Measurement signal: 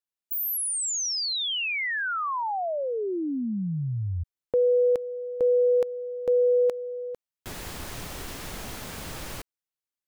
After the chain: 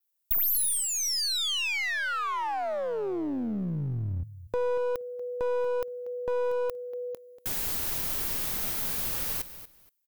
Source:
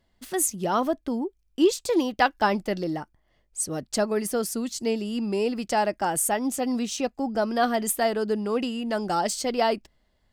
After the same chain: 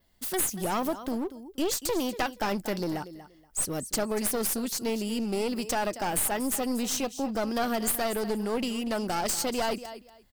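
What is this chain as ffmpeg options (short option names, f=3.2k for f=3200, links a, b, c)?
-filter_complex "[0:a]aemphasis=mode=production:type=50fm,acompressor=threshold=-23dB:ratio=5:attack=8.4:release=88:knee=6:detection=peak,adynamicequalizer=threshold=0.00631:dfrequency=7500:dqfactor=2.4:tfrequency=7500:tqfactor=2.4:attack=5:release=100:ratio=0.375:range=3.5:mode=cutabove:tftype=bell,asplit=2[a][b];[b]aecho=0:1:237|474:0.178|0.0356[c];[a][c]amix=inputs=2:normalize=0,aeval=exprs='clip(val(0),-1,0.0282)':c=same"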